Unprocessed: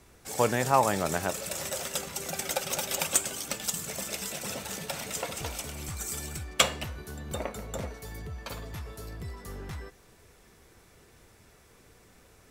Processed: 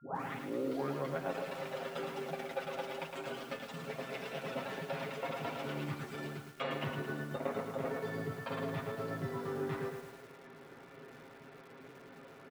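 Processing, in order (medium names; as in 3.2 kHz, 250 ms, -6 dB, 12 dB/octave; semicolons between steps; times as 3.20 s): tape start-up on the opening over 1.25 s; high-pass 160 Hz 24 dB/octave; treble shelf 3.8 kHz -3 dB; comb 7.4 ms, depth 75%; reverse; compression 10:1, threshold -40 dBFS, peak gain reduction 25 dB; reverse; whistle 1.4 kHz -71 dBFS; distance through air 380 m; bit-crushed delay 110 ms, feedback 55%, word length 10-bit, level -5.5 dB; trim +6.5 dB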